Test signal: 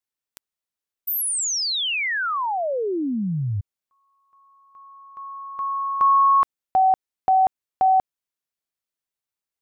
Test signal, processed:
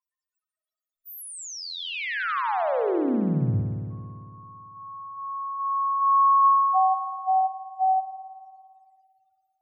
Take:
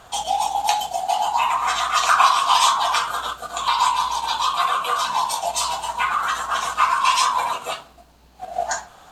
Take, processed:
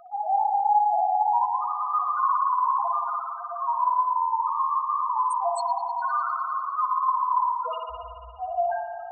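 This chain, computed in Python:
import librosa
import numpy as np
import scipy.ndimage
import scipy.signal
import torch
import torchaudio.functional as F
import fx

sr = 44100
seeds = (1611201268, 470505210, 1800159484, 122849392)

y = fx.power_curve(x, sr, exponent=0.7)
y = fx.spec_topn(y, sr, count=1)
y = fx.rev_spring(y, sr, rt60_s=2.2, pass_ms=(56,), chirp_ms=45, drr_db=2.0)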